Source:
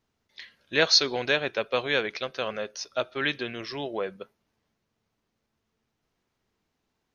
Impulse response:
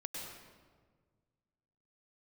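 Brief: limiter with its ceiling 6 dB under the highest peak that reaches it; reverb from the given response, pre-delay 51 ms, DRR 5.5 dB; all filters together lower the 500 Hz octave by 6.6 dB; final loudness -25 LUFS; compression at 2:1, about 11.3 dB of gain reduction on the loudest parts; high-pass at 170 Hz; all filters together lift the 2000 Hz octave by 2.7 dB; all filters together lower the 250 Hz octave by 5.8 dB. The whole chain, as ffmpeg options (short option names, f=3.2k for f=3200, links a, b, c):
-filter_complex "[0:a]highpass=170,equalizer=f=250:t=o:g=-4,equalizer=f=500:t=o:g=-7,equalizer=f=2k:t=o:g=4,acompressor=threshold=-36dB:ratio=2,alimiter=limit=-21.5dB:level=0:latency=1,asplit=2[a][b];[1:a]atrim=start_sample=2205,adelay=51[c];[b][c]afir=irnorm=-1:irlink=0,volume=-5dB[d];[a][d]amix=inputs=2:normalize=0,volume=11dB"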